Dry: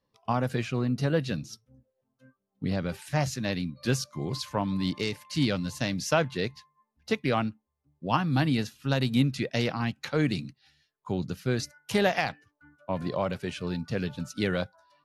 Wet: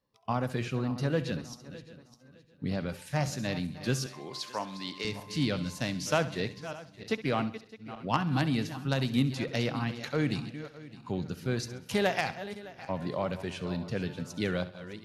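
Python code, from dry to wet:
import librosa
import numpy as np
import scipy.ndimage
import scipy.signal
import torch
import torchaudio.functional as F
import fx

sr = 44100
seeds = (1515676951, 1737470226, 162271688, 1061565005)

y = fx.reverse_delay_fb(x, sr, ms=306, feedback_pct=49, wet_db=-13)
y = fx.cheby_harmonics(y, sr, harmonics=(3, 5), levels_db=(-16, -25), full_scale_db=-10.5)
y = fx.weighting(y, sr, curve='A', at=(4.06, 5.05))
y = fx.echo_feedback(y, sr, ms=67, feedback_pct=42, wet_db=-15.5)
y = F.gain(torch.from_numpy(y), -1.0).numpy()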